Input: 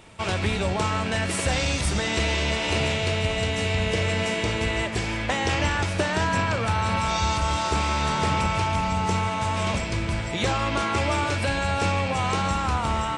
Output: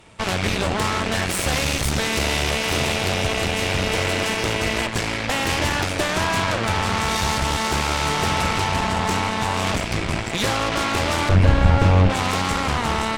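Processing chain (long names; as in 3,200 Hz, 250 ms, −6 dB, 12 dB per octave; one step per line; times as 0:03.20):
harmonic generator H 6 −9 dB, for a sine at −13 dBFS
0:11.29–0:12.10: RIAA equalisation playback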